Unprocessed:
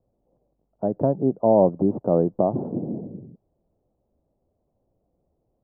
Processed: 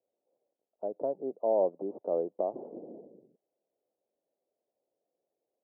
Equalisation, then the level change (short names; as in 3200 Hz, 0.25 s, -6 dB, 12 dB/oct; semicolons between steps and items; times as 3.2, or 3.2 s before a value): ladder band-pass 610 Hz, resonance 30%; 0.0 dB